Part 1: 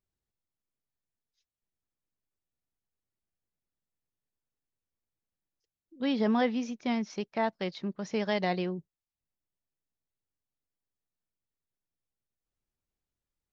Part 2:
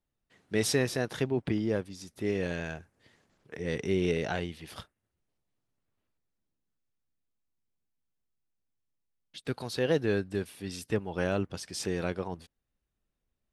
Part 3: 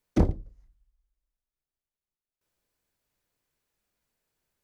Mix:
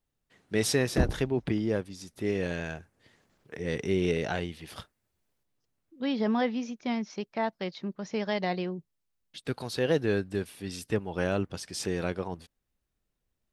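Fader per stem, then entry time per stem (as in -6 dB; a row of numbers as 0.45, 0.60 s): -0.5, +1.0, -4.0 dB; 0.00, 0.00, 0.80 s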